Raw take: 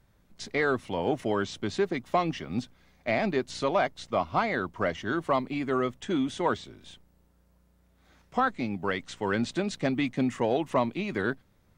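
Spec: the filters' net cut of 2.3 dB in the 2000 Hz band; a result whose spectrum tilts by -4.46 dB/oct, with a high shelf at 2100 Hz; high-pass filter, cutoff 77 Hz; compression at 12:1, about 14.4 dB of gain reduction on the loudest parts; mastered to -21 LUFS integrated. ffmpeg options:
-af "highpass=77,equalizer=f=2k:t=o:g=-5.5,highshelf=f=2.1k:g=4.5,acompressor=threshold=-35dB:ratio=12,volume=19.5dB"

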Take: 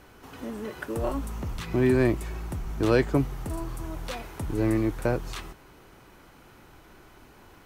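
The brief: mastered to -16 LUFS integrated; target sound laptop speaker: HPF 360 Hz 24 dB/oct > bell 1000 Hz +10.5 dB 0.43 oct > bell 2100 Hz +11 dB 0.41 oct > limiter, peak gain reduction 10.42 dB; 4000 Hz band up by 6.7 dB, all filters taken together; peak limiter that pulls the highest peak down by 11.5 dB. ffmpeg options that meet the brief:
-af "equalizer=f=4k:t=o:g=7,alimiter=limit=-19.5dB:level=0:latency=1,highpass=f=360:w=0.5412,highpass=f=360:w=1.3066,equalizer=f=1k:t=o:w=0.43:g=10.5,equalizer=f=2.1k:t=o:w=0.41:g=11,volume=23dB,alimiter=limit=-5dB:level=0:latency=1"

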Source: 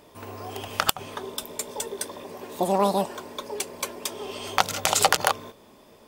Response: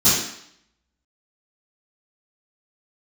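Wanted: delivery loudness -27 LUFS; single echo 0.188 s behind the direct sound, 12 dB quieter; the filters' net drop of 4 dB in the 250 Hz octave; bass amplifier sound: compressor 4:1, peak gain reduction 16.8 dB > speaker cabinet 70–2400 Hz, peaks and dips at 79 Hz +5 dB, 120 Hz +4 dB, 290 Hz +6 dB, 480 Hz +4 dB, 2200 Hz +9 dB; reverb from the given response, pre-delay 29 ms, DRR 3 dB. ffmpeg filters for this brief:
-filter_complex "[0:a]equalizer=f=250:t=o:g=-9,aecho=1:1:188:0.251,asplit=2[a][b];[1:a]atrim=start_sample=2205,adelay=29[c];[b][c]afir=irnorm=-1:irlink=0,volume=-21.5dB[d];[a][d]amix=inputs=2:normalize=0,acompressor=threshold=-33dB:ratio=4,highpass=f=70:w=0.5412,highpass=f=70:w=1.3066,equalizer=f=79:t=q:w=4:g=5,equalizer=f=120:t=q:w=4:g=4,equalizer=f=290:t=q:w=4:g=6,equalizer=f=480:t=q:w=4:g=4,equalizer=f=2.2k:t=q:w=4:g=9,lowpass=f=2.4k:w=0.5412,lowpass=f=2.4k:w=1.3066,volume=9.5dB"

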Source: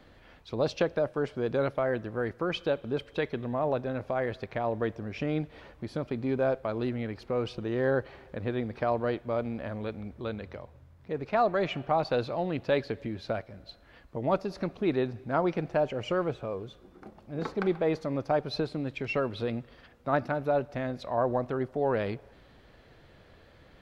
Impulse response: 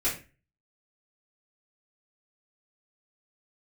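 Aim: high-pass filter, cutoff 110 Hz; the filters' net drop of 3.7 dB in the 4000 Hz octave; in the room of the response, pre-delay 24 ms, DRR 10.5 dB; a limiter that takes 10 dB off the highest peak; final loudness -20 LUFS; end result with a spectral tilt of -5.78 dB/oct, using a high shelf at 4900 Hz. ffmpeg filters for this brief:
-filter_complex "[0:a]highpass=110,equalizer=f=4k:t=o:g=-8.5,highshelf=f=4.9k:g=8.5,alimiter=limit=-21.5dB:level=0:latency=1,asplit=2[a][b];[1:a]atrim=start_sample=2205,adelay=24[c];[b][c]afir=irnorm=-1:irlink=0,volume=-19dB[d];[a][d]amix=inputs=2:normalize=0,volume=13.5dB"

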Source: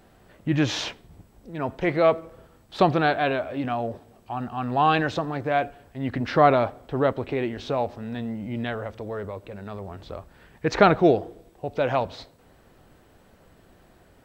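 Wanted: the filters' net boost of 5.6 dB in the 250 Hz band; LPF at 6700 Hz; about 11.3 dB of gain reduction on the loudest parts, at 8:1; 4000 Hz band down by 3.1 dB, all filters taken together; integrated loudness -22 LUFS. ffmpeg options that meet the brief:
-af "lowpass=6.7k,equalizer=f=250:t=o:g=7.5,equalizer=f=4k:t=o:g=-3.5,acompressor=threshold=-21dB:ratio=8,volume=6.5dB"

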